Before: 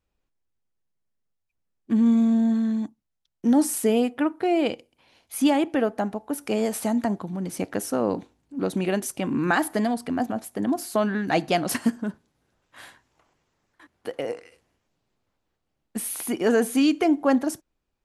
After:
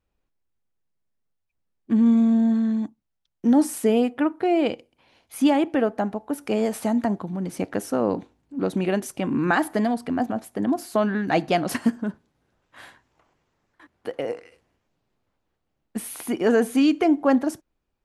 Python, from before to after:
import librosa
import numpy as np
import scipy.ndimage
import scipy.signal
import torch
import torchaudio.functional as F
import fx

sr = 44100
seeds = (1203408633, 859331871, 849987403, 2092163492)

y = fx.high_shelf(x, sr, hz=4300.0, db=-7.5)
y = F.gain(torch.from_numpy(y), 1.5).numpy()